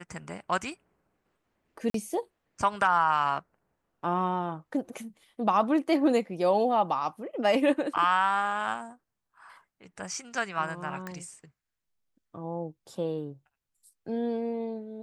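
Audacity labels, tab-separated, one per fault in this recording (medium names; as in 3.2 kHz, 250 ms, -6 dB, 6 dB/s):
1.900000	1.940000	dropout 43 ms
11.070000	11.070000	pop -24 dBFS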